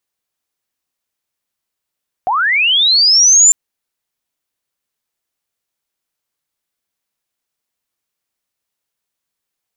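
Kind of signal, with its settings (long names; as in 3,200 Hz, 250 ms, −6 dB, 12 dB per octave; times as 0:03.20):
glide linear 690 Hz → 7,300 Hz −12 dBFS → −4 dBFS 1.25 s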